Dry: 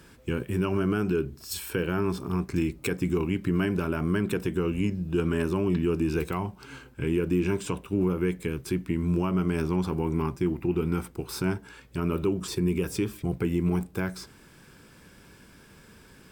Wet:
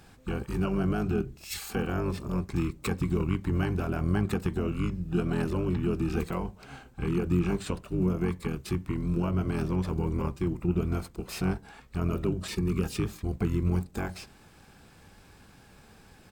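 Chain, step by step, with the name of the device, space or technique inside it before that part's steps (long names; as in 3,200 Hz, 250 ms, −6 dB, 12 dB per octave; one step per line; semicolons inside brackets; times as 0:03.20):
octave pedal (pitch-shifted copies added −12 semitones 0 dB)
level −4.5 dB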